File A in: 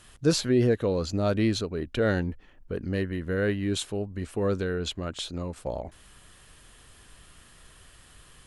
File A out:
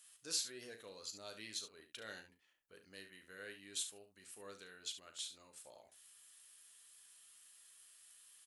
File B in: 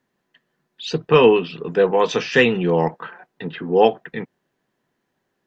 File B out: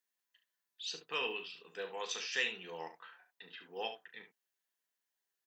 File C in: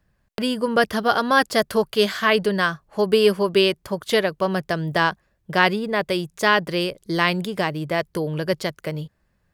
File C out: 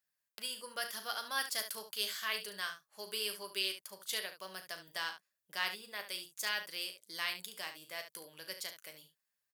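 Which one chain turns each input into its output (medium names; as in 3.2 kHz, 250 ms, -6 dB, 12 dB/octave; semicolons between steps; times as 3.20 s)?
differentiator; early reflections 10 ms -10.5 dB, 37 ms -10 dB, 71 ms -10.5 dB; trim -6 dB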